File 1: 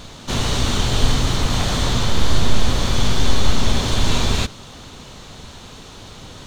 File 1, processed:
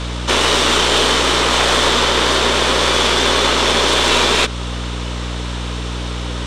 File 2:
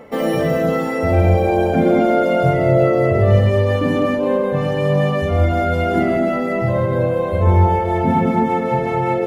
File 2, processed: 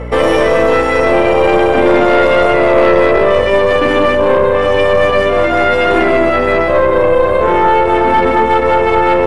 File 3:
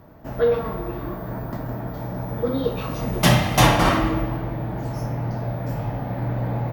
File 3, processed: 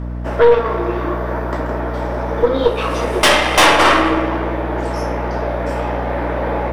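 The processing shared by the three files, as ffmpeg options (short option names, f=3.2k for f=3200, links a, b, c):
-filter_complex "[0:a]highpass=f=350:w=0.5412,highpass=f=350:w=1.3066,equalizer=f=730:t=q:w=4:g=-6,equalizer=f=4.3k:t=q:w=4:g=-6,equalizer=f=6.6k:t=q:w=4:g=-8,lowpass=f=9.2k:w=0.5412,lowpass=f=9.2k:w=1.3066,aeval=exprs='val(0)+0.0141*(sin(2*PI*60*n/s)+sin(2*PI*2*60*n/s)/2+sin(2*PI*3*60*n/s)/3+sin(2*PI*4*60*n/s)/4+sin(2*PI*5*60*n/s)/5)':c=same,aeval=exprs='0.501*(cos(1*acos(clip(val(0)/0.501,-1,1)))-cos(1*PI/2))+0.0631*(cos(3*acos(clip(val(0)/0.501,-1,1)))-cos(3*PI/2))+0.0708*(cos(4*acos(clip(val(0)/0.501,-1,1)))-cos(4*PI/2))+0.00316*(cos(6*acos(clip(val(0)/0.501,-1,1)))-cos(6*PI/2))':c=same,asplit=2[a][b];[b]acompressor=threshold=-32dB:ratio=5,volume=-0.5dB[c];[a][c]amix=inputs=2:normalize=0,apsyclip=14dB,volume=-1.5dB"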